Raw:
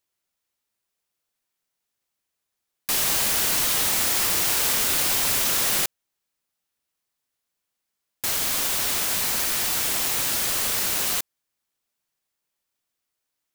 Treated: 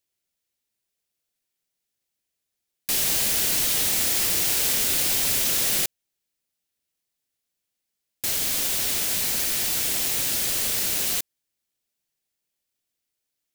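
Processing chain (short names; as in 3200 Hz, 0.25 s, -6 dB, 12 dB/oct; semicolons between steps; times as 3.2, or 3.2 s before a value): bell 1100 Hz -8.5 dB 1.2 oct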